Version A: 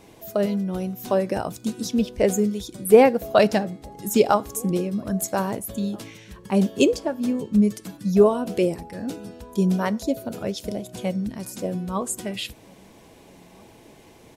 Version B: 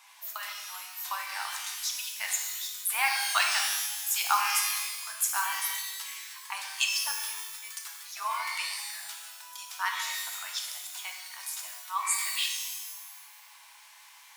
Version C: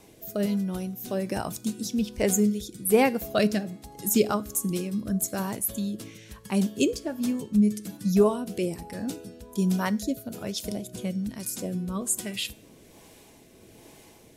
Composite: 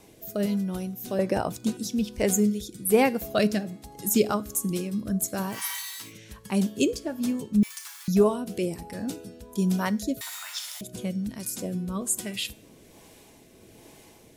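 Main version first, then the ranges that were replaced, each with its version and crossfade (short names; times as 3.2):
C
1.19–1.77 from A
5.56–6.06 from B, crossfade 0.16 s
7.63–8.08 from B
10.21–10.81 from B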